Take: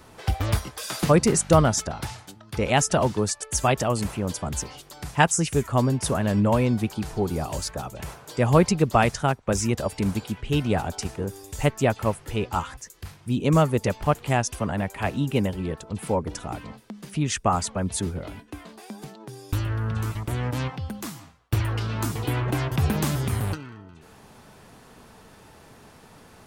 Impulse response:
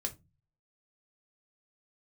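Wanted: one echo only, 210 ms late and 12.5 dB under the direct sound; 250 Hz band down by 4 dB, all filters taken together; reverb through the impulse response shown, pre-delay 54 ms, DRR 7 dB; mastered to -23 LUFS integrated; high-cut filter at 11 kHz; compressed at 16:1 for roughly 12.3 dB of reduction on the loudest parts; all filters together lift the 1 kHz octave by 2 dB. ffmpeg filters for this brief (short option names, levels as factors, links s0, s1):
-filter_complex "[0:a]lowpass=11000,equalizer=f=250:t=o:g=-6,equalizer=f=1000:t=o:g=3,acompressor=threshold=0.0631:ratio=16,aecho=1:1:210:0.237,asplit=2[s0][s1];[1:a]atrim=start_sample=2205,adelay=54[s2];[s1][s2]afir=irnorm=-1:irlink=0,volume=0.422[s3];[s0][s3]amix=inputs=2:normalize=0,volume=2.11"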